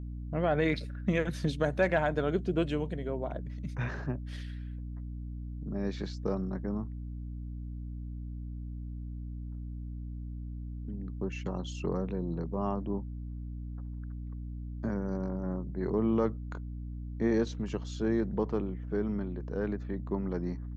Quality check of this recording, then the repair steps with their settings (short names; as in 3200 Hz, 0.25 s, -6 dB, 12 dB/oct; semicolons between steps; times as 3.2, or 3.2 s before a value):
hum 60 Hz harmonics 5 -39 dBFS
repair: de-hum 60 Hz, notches 5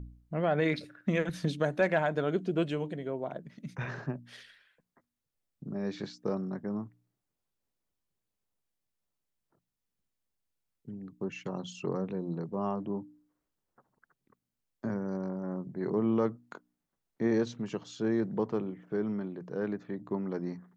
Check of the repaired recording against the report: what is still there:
none